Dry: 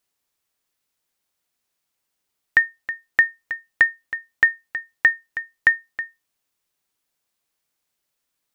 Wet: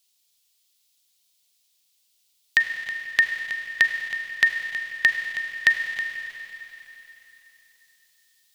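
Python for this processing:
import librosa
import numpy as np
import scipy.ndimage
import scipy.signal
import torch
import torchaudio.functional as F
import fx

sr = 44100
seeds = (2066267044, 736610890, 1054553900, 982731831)

p1 = fx.peak_eq(x, sr, hz=290.0, db=-9.5, octaves=0.3)
p2 = fx.rev_schroeder(p1, sr, rt60_s=3.4, comb_ms=33, drr_db=5.0)
p3 = fx.rider(p2, sr, range_db=4, speed_s=2.0)
p4 = p2 + F.gain(torch.from_numpy(p3), 3.0).numpy()
p5 = fx.high_shelf_res(p4, sr, hz=2300.0, db=14.0, q=1.5)
y = F.gain(torch.from_numpy(p5), -11.5).numpy()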